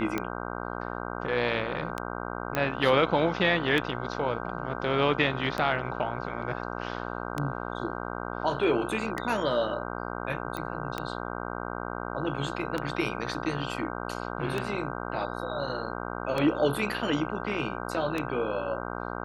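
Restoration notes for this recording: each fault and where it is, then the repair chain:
buzz 60 Hz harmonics 26 -35 dBFS
tick 33 1/3 rpm -15 dBFS
2.55 pop -13 dBFS
10.57 pop -20 dBFS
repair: de-click; de-hum 60 Hz, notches 26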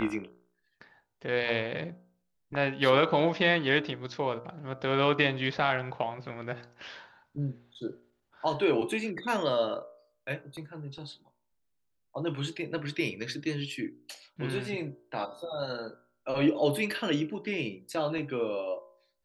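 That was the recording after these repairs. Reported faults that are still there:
10.57 pop

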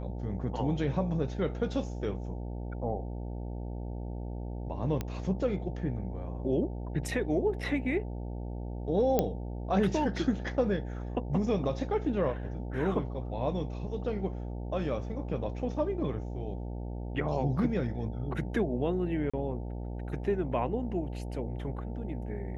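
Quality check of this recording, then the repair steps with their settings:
buzz 60 Hz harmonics 15 -37 dBFS
5.01 pop -19 dBFS
9.19 pop -12 dBFS
19.3–19.34 gap 35 ms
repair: de-click; de-hum 60 Hz, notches 15; interpolate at 19.3, 35 ms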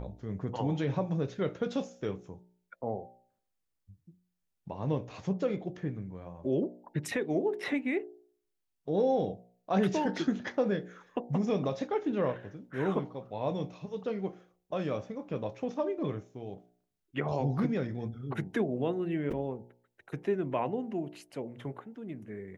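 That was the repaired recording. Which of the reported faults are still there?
9.19 pop

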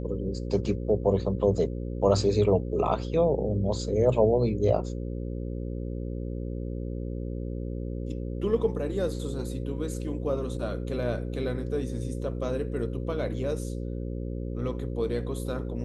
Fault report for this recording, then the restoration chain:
buzz 60 Hz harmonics 9 -33 dBFS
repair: de-hum 60 Hz, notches 9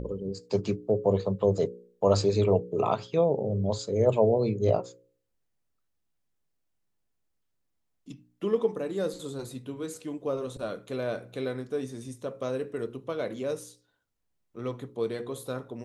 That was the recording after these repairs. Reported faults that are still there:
none

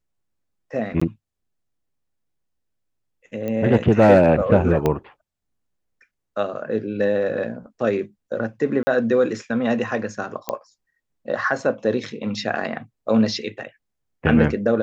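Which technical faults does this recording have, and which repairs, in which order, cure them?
1–1.01 gap 15 ms
3.48 pop -16 dBFS
4.86 pop -8 dBFS
8.83–8.87 gap 40 ms
10.49 pop -10 dBFS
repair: de-click; interpolate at 1, 15 ms; interpolate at 8.83, 40 ms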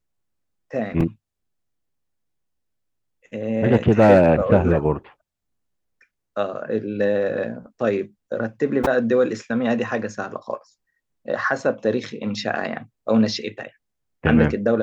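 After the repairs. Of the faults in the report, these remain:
4.86 pop

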